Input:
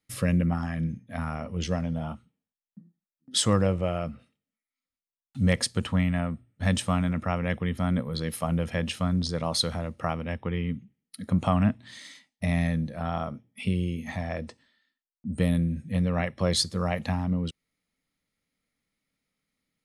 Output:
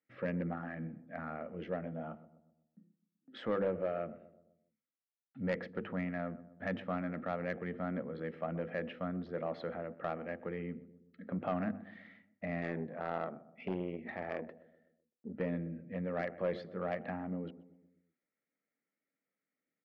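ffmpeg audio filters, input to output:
ffmpeg -i in.wav -filter_complex "[0:a]lowpass=frequency=1800:width=0.5412,lowpass=frequency=1800:width=1.3066,equalizer=frequency=1000:width_type=o:width=0.66:gain=-13,bandreject=frequency=50:width_type=h:width=6,bandreject=frequency=100:width_type=h:width=6,bandreject=frequency=150:width_type=h:width=6,bandreject=frequency=200:width_type=h:width=6,bandreject=frequency=250:width_type=h:width=6,bandreject=frequency=300:width_type=h:width=6,bandreject=frequency=350:width_type=h:width=6,bandreject=frequency=400:width_type=h:width=6,bandreject=frequency=450:width_type=h:width=6,bandreject=frequency=500:width_type=h:width=6,asplit=2[link_01][link_02];[link_02]adelay=126,lowpass=frequency=950:poles=1,volume=-15.5dB,asplit=2[link_03][link_04];[link_04]adelay=126,lowpass=frequency=950:poles=1,volume=0.54,asplit=2[link_05][link_06];[link_06]adelay=126,lowpass=frequency=950:poles=1,volume=0.54,asplit=2[link_07][link_08];[link_08]adelay=126,lowpass=frequency=950:poles=1,volume=0.54,asplit=2[link_09][link_10];[link_10]adelay=126,lowpass=frequency=950:poles=1,volume=0.54[link_11];[link_01][link_03][link_05][link_07][link_09][link_11]amix=inputs=6:normalize=0,asplit=3[link_12][link_13][link_14];[link_12]afade=type=out:start_time=12.61:duration=0.02[link_15];[link_13]aeval=exprs='0.15*(cos(1*acos(clip(val(0)/0.15,-1,1)))-cos(1*PI/2))+0.0299*(cos(4*acos(clip(val(0)/0.15,-1,1)))-cos(4*PI/2))':channel_layout=same,afade=type=in:start_time=12.61:duration=0.02,afade=type=out:start_time=15.31:duration=0.02[link_16];[link_14]afade=type=in:start_time=15.31:duration=0.02[link_17];[link_15][link_16][link_17]amix=inputs=3:normalize=0,highpass=340,asoftclip=type=tanh:threshold=-24dB,volume=-1dB" out.wav

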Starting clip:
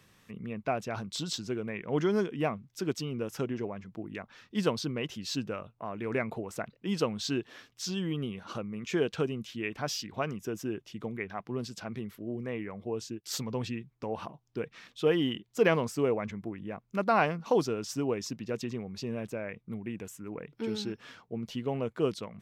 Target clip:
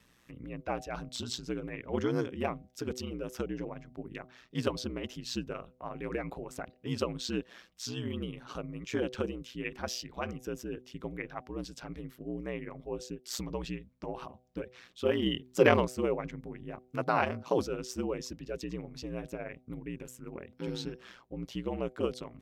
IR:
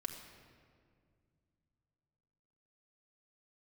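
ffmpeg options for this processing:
-filter_complex "[0:a]asettb=1/sr,asplit=3[link_01][link_02][link_03];[link_01]atrim=end=15.264[link_04];[link_02]atrim=start=15.26:end=15.85,asetpts=PTS-STARTPTS,afade=type=in:duration=0.004:curve=qsin,afade=type=out:start_time=0.586:duration=0.004:curve=qsin,acontrast=37[link_05];[link_03]atrim=start=15.846[link_06];[link_04][link_05]acrossfade=duration=0.004:curve1=hsin:curve2=qsin[link_07];[link_07][link_06]acrossfade=duration=0.004:curve1=qsin:curve2=hsin,aeval=exprs='val(0)*sin(2*PI*61*n/s)':channel_layout=same,bandreject=frequency=126.1:width_type=h:width=4,bandreject=frequency=252.2:width_type=h:width=4,bandreject=frequency=378.3:width_type=h:width=4,bandreject=frequency=504.4:width_type=h:width=4,bandreject=frequency=630.5:width_type=h:width=4,bandreject=frequency=756.6:width_type=h:width=4"

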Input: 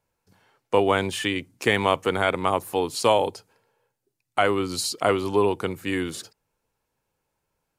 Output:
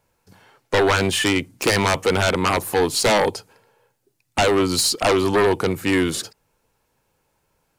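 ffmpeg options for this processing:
ffmpeg -i in.wav -af "aeval=exprs='0.501*sin(PI/2*3.98*val(0)/0.501)':channel_layout=same,aeval=exprs='0.501*(cos(1*acos(clip(val(0)/0.501,-1,1)))-cos(1*PI/2))+0.00562*(cos(8*acos(clip(val(0)/0.501,-1,1)))-cos(8*PI/2))':channel_layout=same,volume=-6.5dB" out.wav

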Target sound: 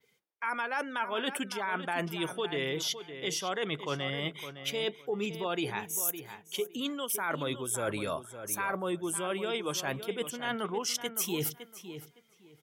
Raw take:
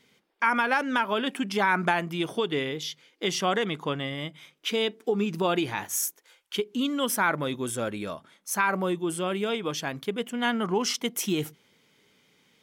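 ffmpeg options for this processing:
ffmpeg -i in.wav -filter_complex "[0:a]acrossover=split=210|4500[link_01][link_02][link_03];[link_02]highpass=290[link_04];[link_03]crystalizer=i=1.5:c=0[link_05];[link_01][link_04][link_05]amix=inputs=3:normalize=0,adynamicequalizer=threshold=0.01:dfrequency=8700:dqfactor=0.74:tfrequency=8700:tqfactor=0.74:attack=5:release=100:ratio=0.375:range=2:mode=cutabove:tftype=bell,areverse,acompressor=threshold=-36dB:ratio=8,areverse,afftdn=noise_reduction=17:noise_floor=-55,asplit=2[link_06][link_07];[link_07]adelay=561,lowpass=frequency=3900:poles=1,volume=-10.5dB,asplit=2[link_08][link_09];[link_09]adelay=561,lowpass=frequency=3900:poles=1,volume=0.2,asplit=2[link_10][link_11];[link_11]adelay=561,lowpass=frequency=3900:poles=1,volume=0.2[link_12];[link_06][link_08][link_10][link_12]amix=inputs=4:normalize=0,volume=6dB" out.wav

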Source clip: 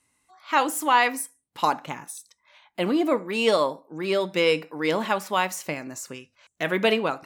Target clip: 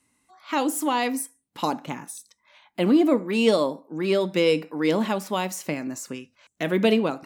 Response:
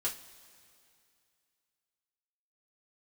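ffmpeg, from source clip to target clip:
-filter_complex "[0:a]equalizer=frequency=240:width_type=o:width=1.1:gain=7.5,acrossover=split=780|2800[link_01][link_02][link_03];[link_02]acompressor=threshold=-33dB:ratio=6[link_04];[link_01][link_04][link_03]amix=inputs=3:normalize=0"

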